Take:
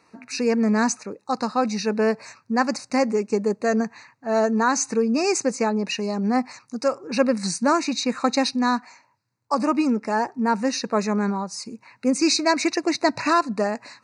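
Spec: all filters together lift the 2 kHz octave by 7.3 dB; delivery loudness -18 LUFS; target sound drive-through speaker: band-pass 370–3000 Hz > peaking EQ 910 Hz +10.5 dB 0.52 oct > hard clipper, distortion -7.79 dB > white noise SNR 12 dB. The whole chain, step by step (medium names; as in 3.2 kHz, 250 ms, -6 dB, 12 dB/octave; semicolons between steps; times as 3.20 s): band-pass 370–3000 Hz; peaking EQ 910 Hz +10.5 dB 0.52 oct; peaking EQ 2 kHz +9 dB; hard clipper -14.5 dBFS; white noise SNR 12 dB; trim +4.5 dB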